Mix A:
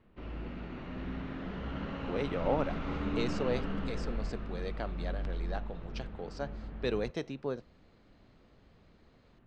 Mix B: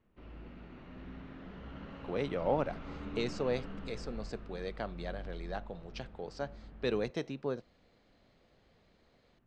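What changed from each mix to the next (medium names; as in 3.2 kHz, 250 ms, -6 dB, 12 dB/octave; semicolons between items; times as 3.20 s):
background -8.5 dB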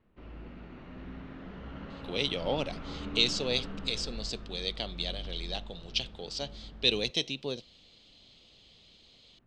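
speech: add resonant high shelf 2.2 kHz +13.5 dB, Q 3; background +3.5 dB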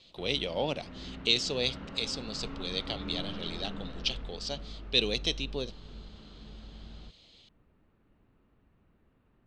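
speech: entry -1.90 s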